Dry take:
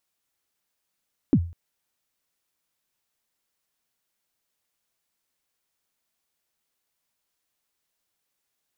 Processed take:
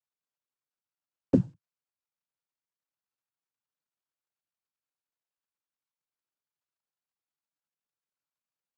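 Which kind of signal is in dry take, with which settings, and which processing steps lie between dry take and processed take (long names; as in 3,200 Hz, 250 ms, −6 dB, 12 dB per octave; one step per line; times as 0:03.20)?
synth kick length 0.20 s, from 330 Hz, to 85 Hz, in 62 ms, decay 0.39 s, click off, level −11 dB
mu-law and A-law mismatch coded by A
cochlear-implant simulation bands 8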